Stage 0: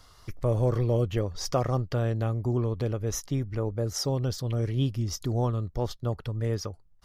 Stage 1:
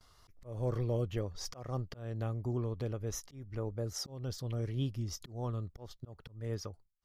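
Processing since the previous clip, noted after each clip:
noise gate with hold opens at −46 dBFS
volume swells 253 ms
level −8 dB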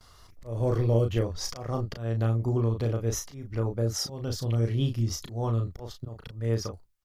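double-tracking delay 35 ms −5 dB
level +7.5 dB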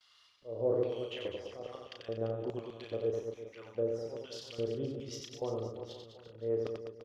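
auto-filter band-pass square 1.2 Hz 480–3,000 Hz
on a send: reverse bouncing-ball delay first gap 90 ms, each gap 1.25×, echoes 5

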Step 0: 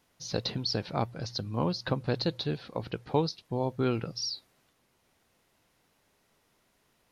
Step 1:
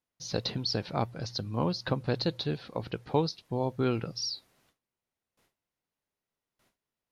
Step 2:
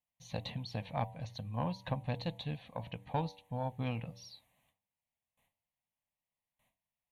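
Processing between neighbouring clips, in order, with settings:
noise gate with hold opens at −58 dBFS
phaser with its sweep stopped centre 1,400 Hz, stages 6; harmonic generator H 2 −16 dB, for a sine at −17.5 dBFS; hum removal 96.26 Hz, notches 10; level −3 dB

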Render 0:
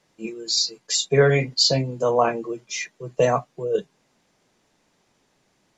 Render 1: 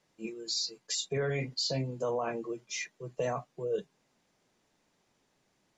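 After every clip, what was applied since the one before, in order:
brickwall limiter −15.5 dBFS, peak gain reduction 10.5 dB
level −7.5 dB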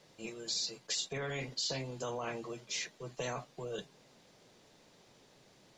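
octave-band graphic EQ 125/500/4,000 Hz +5/+6/+6 dB
every bin compressed towards the loudest bin 2 to 1
level −7 dB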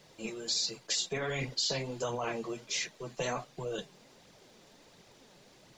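surface crackle 520 per second −65 dBFS
flanger 1.4 Hz, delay 0.3 ms, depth 5.6 ms, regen +42%
level +8 dB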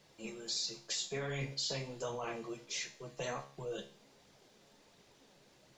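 tuned comb filter 69 Hz, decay 0.46 s, harmonics all, mix 70%
level +1 dB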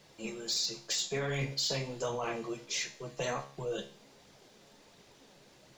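gain into a clipping stage and back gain 30.5 dB
level +5 dB

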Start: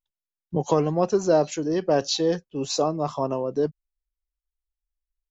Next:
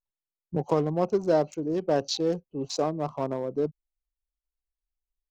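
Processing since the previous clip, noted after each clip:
adaptive Wiener filter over 25 samples
level −3 dB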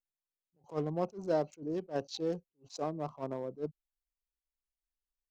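level that may rise only so fast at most 290 dB per second
level −7.5 dB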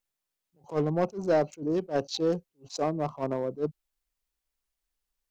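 soft clipping −24 dBFS, distortion −18 dB
level +8.5 dB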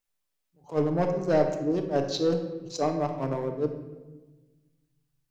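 convolution reverb RT60 1.2 s, pre-delay 7 ms, DRR 4 dB

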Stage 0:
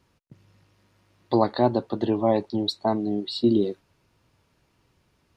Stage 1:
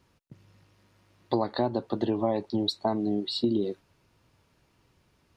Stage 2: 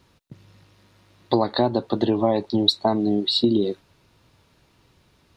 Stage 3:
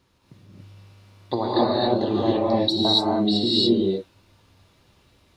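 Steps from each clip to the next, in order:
downward compressor 6 to 1, threshold −22 dBFS, peak gain reduction 8.5 dB
parametric band 3,800 Hz +5.5 dB 0.36 octaves; level +6.5 dB
reverb whose tail is shaped and stops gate 310 ms rising, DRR −6 dB; level −6 dB

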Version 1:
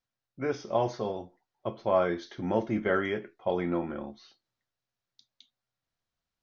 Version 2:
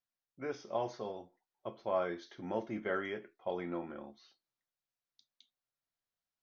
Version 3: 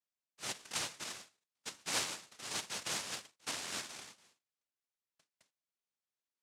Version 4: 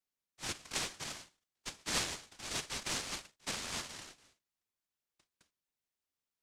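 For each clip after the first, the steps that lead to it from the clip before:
low-shelf EQ 160 Hz −9.5 dB; level −7.5 dB
cochlear-implant simulation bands 1; level −3.5 dB
frequency shifter −480 Hz; level +1 dB

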